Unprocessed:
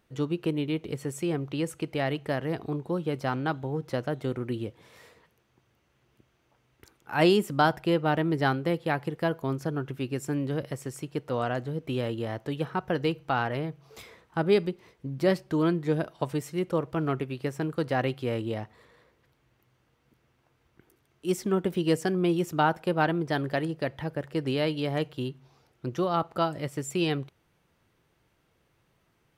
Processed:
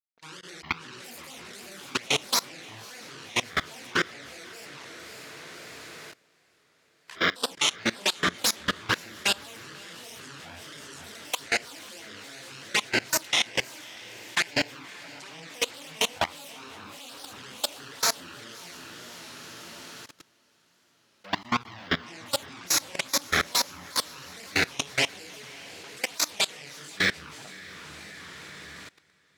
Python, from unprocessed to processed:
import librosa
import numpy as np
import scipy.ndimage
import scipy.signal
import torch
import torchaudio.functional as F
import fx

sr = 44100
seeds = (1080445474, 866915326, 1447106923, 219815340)

y = fx.self_delay(x, sr, depth_ms=0.79)
y = fx.doubler(y, sr, ms=36.0, db=-5)
y = fx.room_shoebox(y, sr, seeds[0], volume_m3=76.0, walls='mixed', distance_m=0.99)
y = fx.fuzz(y, sr, gain_db=39.0, gate_db=-35.0)
y = fx.weighting(y, sr, curve='ITU-R 468')
y = fx.env_flanger(y, sr, rest_ms=2.7, full_db=-9.0)
y = fx.high_shelf(y, sr, hz=3500.0, db=-8.5)
y = fx.hum_notches(y, sr, base_hz=60, count=10)
y = fx.granulator(y, sr, seeds[1], grain_ms=226.0, per_s=4.9, spray_ms=13.0, spread_st=12)
y = fx.echo_diffused(y, sr, ms=583, feedback_pct=55, wet_db=-9)
y = fx.level_steps(y, sr, step_db=22)
y = fx.record_warp(y, sr, rpm=33.33, depth_cents=100.0)